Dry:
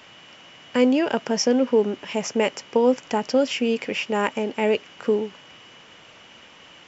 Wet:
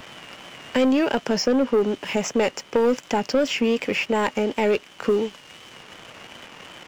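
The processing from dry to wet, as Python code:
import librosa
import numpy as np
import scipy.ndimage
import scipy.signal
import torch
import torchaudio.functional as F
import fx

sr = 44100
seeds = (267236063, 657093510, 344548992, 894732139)

y = fx.vibrato(x, sr, rate_hz=2.7, depth_cents=66.0)
y = fx.leveller(y, sr, passes=2)
y = fx.band_squash(y, sr, depth_pct=40)
y = y * librosa.db_to_amplitude(-5.0)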